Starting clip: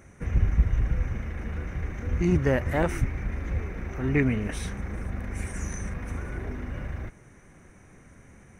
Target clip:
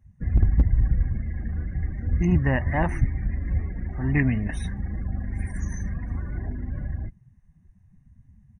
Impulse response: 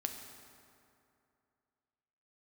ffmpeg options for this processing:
-af "afftdn=noise_reduction=26:noise_floor=-39,aecho=1:1:1.1:0.68,aeval=exprs='0.355*(abs(mod(val(0)/0.355+3,4)-2)-1)':channel_layout=same"

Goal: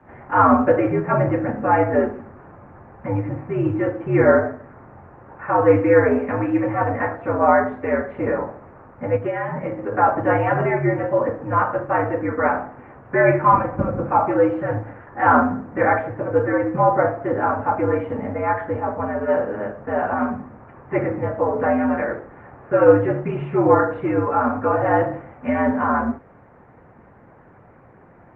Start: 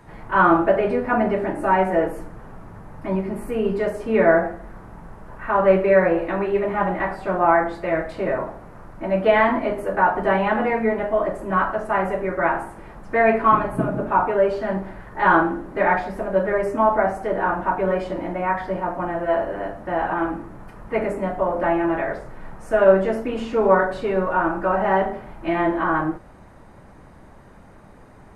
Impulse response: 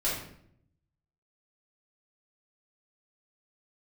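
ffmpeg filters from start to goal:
-filter_complex "[0:a]highpass=frequency=170:width_type=q:width=0.5412,highpass=frequency=170:width_type=q:width=1.307,lowpass=frequency=2500:width_type=q:width=0.5176,lowpass=frequency=2500:width_type=q:width=0.7071,lowpass=frequency=2500:width_type=q:width=1.932,afreqshift=-83,asplit=3[link_01][link_02][link_03];[link_01]afade=type=out:start_time=9.16:duration=0.02[link_04];[link_02]acompressor=threshold=-24dB:ratio=5,afade=type=in:start_time=9.16:duration=0.02,afade=type=out:start_time=9.91:duration=0.02[link_05];[link_03]afade=type=in:start_time=9.91:duration=0.02[link_06];[link_04][link_05][link_06]amix=inputs=3:normalize=0,volume=1.5dB" -ar 48000 -c:a libopus -b:a 20k

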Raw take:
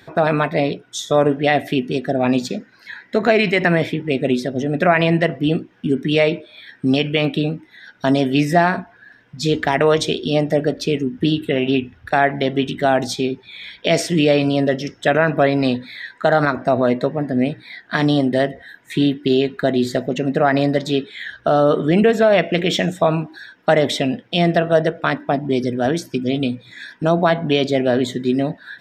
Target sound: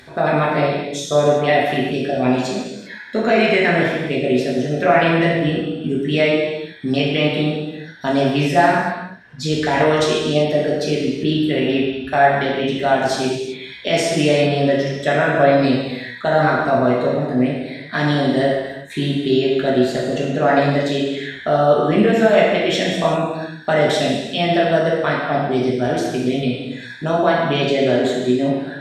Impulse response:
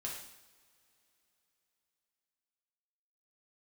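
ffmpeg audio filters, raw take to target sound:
-filter_complex "[0:a]acompressor=mode=upward:threshold=-37dB:ratio=2.5[link_01];[1:a]atrim=start_sample=2205,afade=type=out:start_time=0.27:duration=0.01,atrim=end_sample=12348,asetrate=24255,aresample=44100[link_02];[link_01][link_02]afir=irnorm=-1:irlink=0,volume=-3dB"

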